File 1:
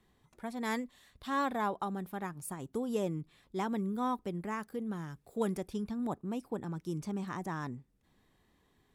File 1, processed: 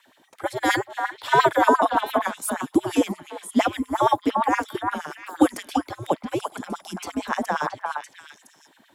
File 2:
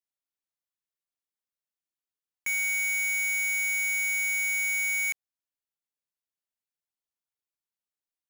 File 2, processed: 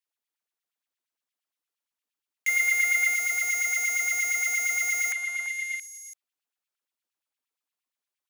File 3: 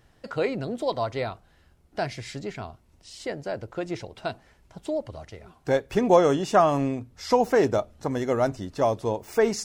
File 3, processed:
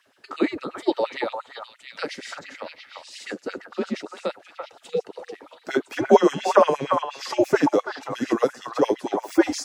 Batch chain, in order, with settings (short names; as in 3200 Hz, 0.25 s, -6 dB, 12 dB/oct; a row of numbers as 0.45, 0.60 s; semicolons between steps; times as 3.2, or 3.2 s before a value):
delay with a stepping band-pass 0.337 s, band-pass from 1200 Hz, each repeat 1.4 oct, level -2 dB; frequency shift -130 Hz; LFO high-pass sine 8.6 Hz 240–2900 Hz; match loudness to -24 LUFS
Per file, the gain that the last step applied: +14.0, +2.0, +1.0 dB